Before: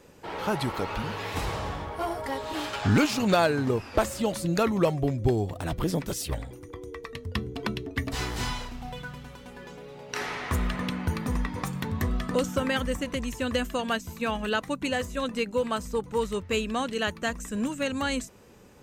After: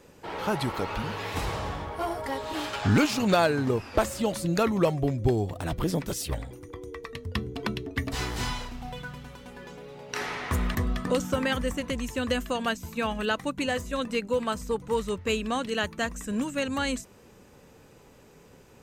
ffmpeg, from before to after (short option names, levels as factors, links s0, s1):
-filter_complex "[0:a]asplit=2[s0][s1];[s0]atrim=end=10.752[s2];[s1]atrim=start=11.988[s3];[s2][s3]acrossfade=d=0.004:c1=hsin:c2=hsin"